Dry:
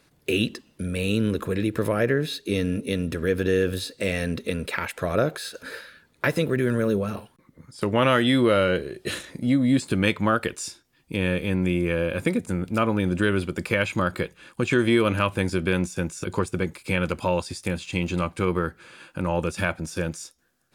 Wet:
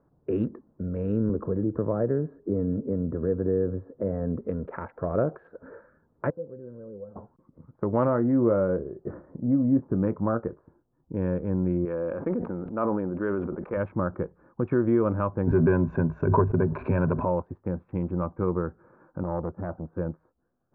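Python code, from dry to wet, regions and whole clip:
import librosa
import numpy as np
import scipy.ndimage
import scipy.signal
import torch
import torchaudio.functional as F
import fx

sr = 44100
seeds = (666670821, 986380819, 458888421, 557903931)

y = fx.chain(x, sr, fx.moving_average(points=14),
    fx.band_squash(depth_pct=40), at=(1.29, 4.41))
y = fx.chain(y, sr, fx.lowpass(hz=1000.0, slope=12),
    fx.comb_fb(f0_hz=510.0, decay_s=0.17, harmonics='odd', damping=0.0, mix_pct=90), at=(6.3, 7.16))
y = fx.chain(y, sr, fx.lowpass(hz=2900.0, slope=12),
    fx.high_shelf(hz=2200.0, db=-11.0),
    fx.doubler(ms=26.0, db=-13), at=(8.05, 11.17))
y = fx.chain(y, sr, fx.peak_eq(hz=96.0, db=-13.5, octaves=2.1),
    fx.sustainer(db_per_s=27.0), at=(11.85, 13.77))
y = fx.chain(y, sr, fx.ripple_eq(per_octave=1.5, db=12),
    fx.leveller(passes=1),
    fx.pre_swell(db_per_s=36.0), at=(15.47, 17.25))
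y = fx.chain(y, sr, fx.lowpass(hz=1400.0, slope=12),
    fx.transformer_sat(knee_hz=640.0), at=(19.23, 19.93))
y = fx.wiener(y, sr, points=15)
y = scipy.signal.sosfilt(scipy.signal.butter(4, 1200.0, 'lowpass', fs=sr, output='sos'), y)
y = y * 10.0 ** (-2.0 / 20.0)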